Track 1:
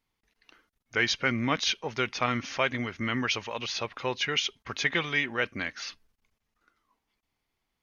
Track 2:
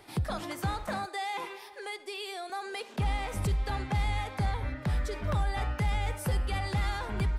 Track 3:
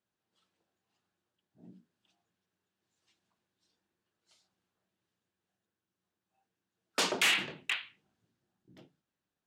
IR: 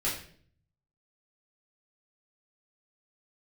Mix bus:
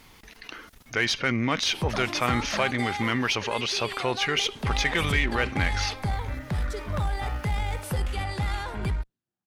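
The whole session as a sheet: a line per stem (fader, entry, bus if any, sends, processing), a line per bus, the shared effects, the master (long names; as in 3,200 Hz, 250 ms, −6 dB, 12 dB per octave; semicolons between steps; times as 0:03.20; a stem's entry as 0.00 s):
0.0 dB, 0.00 s, no send, envelope flattener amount 50%
+1.5 dB, 1.65 s, no send, no processing
−9.5 dB, 0.85 s, no send, downward compressor 5 to 1, threshold −37 dBFS, peak gain reduction 12 dB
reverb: not used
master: harmonic generator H 8 −30 dB, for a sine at −8.5 dBFS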